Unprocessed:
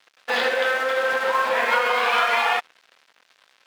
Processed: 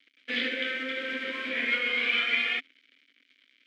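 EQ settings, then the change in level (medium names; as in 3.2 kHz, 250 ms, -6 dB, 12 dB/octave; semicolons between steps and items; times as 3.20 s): vowel filter i; +8.5 dB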